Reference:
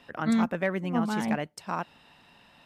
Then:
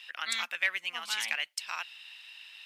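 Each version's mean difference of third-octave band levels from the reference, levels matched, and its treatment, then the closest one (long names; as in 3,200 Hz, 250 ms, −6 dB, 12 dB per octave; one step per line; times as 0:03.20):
13.5 dB: high-pass with resonance 2,700 Hz, resonance Q 1.8
level +7 dB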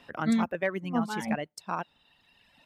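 3.5 dB: reverb reduction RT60 1.5 s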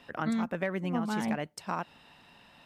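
2.5 dB: downward compressor, threshold −27 dBFS, peak gain reduction 7 dB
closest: third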